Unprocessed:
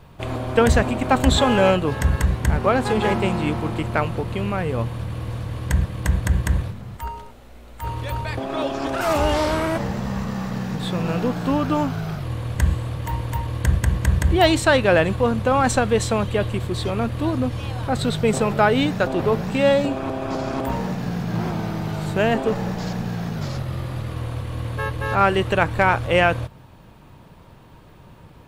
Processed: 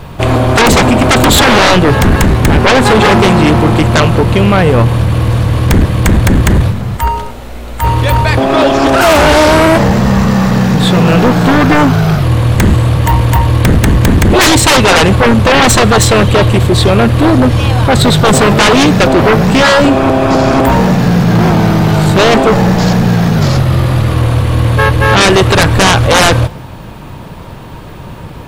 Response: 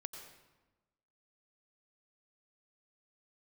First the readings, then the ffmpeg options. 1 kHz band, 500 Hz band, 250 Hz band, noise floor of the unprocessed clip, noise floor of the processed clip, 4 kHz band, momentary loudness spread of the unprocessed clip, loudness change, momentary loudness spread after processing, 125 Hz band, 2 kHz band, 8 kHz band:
+13.0 dB, +11.5 dB, +14.5 dB, −46 dBFS, −27 dBFS, +17.0 dB, 11 LU, +13.5 dB, 5 LU, +15.0 dB, +14.0 dB, +17.5 dB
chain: -filter_complex "[0:a]aeval=exprs='0.631*sin(PI/2*5.01*val(0)/0.631)':channel_layout=same,asplit=2[link_01][link_02];[1:a]atrim=start_sample=2205[link_03];[link_02][link_03]afir=irnorm=-1:irlink=0,volume=-14dB[link_04];[link_01][link_04]amix=inputs=2:normalize=0"

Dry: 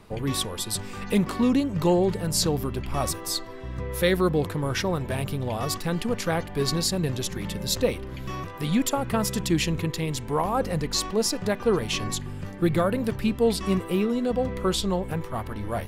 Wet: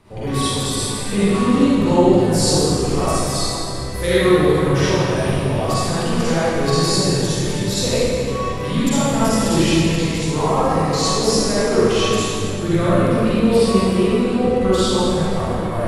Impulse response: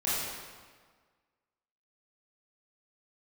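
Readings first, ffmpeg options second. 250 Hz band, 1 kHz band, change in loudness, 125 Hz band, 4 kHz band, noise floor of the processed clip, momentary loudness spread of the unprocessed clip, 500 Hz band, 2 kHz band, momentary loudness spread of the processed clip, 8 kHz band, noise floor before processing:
+8.5 dB, +9.0 dB, +8.5 dB, +8.5 dB, +7.5 dB, −24 dBFS, 8 LU, +9.0 dB, +8.0 dB, 6 LU, +7.5 dB, −38 dBFS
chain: -filter_complex "[1:a]atrim=start_sample=2205,asetrate=22932,aresample=44100[link_01];[0:a][link_01]afir=irnorm=-1:irlink=0,volume=-6dB"

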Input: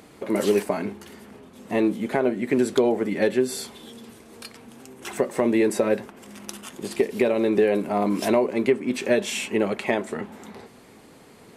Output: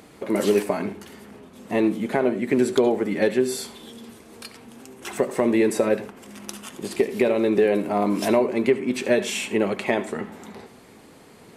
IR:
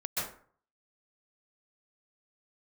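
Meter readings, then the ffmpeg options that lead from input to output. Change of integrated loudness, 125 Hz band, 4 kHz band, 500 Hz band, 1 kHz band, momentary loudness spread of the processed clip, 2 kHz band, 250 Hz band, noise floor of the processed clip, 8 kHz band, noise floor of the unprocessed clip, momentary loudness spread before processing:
+1.0 dB, +1.0 dB, +1.0 dB, +1.0 dB, +1.0 dB, 19 LU, +1.0 dB, +1.0 dB, −49 dBFS, +1.0 dB, −50 dBFS, 19 LU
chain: -filter_complex "[0:a]asplit=2[link_01][link_02];[1:a]atrim=start_sample=2205,asetrate=79380,aresample=44100[link_03];[link_02][link_03]afir=irnorm=-1:irlink=0,volume=-13dB[link_04];[link_01][link_04]amix=inputs=2:normalize=0"

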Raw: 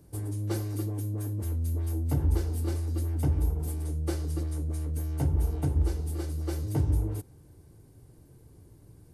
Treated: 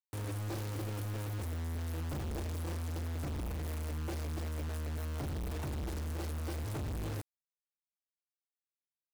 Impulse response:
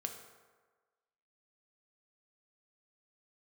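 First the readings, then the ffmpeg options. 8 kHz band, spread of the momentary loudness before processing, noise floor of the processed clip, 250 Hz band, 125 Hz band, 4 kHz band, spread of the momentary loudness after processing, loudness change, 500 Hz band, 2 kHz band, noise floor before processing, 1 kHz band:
−4.5 dB, 5 LU, below −85 dBFS, −7.5 dB, −9.0 dB, +1.0 dB, 0 LU, −8.5 dB, −5.0 dB, +3.0 dB, −56 dBFS, −0.5 dB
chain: -filter_complex "[0:a]aeval=exprs='0.141*(cos(1*acos(clip(val(0)/0.141,-1,1)))-cos(1*PI/2))+0.002*(cos(6*acos(clip(val(0)/0.141,-1,1)))-cos(6*PI/2))':channel_layout=same,highpass=frequency=55:poles=1,asoftclip=type=tanh:threshold=-34dB,acrossover=split=4300[link_01][link_02];[link_02]acompressor=threshold=-59dB:ratio=4:attack=1:release=60[link_03];[link_01][link_03]amix=inputs=2:normalize=0,acrusher=bits=6:mix=0:aa=0.000001"

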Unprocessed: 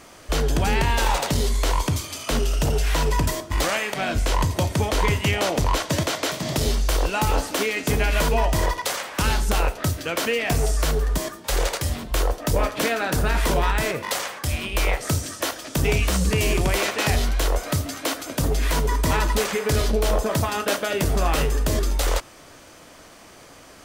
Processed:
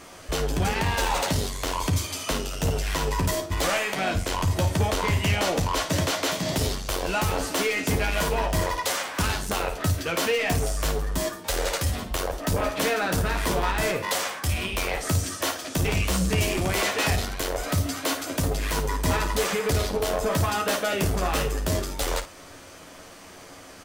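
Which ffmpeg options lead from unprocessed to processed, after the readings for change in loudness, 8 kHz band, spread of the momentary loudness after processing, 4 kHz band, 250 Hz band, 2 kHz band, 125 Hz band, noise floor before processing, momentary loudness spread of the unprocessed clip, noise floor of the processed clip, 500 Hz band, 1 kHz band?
−2.5 dB, −1.5 dB, 5 LU, −1.5 dB, −2.0 dB, −1.5 dB, −2.5 dB, −47 dBFS, 5 LU, −45 dBFS, −2.0 dB, −2.0 dB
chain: -filter_complex "[0:a]asoftclip=type=tanh:threshold=-19dB,asplit=2[link_01][link_02];[link_02]aecho=0:1:11|54:0.501|0.282[link_03];[link_01][link_03]amix=inputs=2:normalize=0"

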